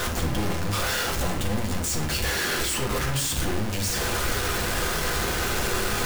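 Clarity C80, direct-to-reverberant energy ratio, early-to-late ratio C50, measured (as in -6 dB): 11.5 dB, -0.5 dB, 8.0 dB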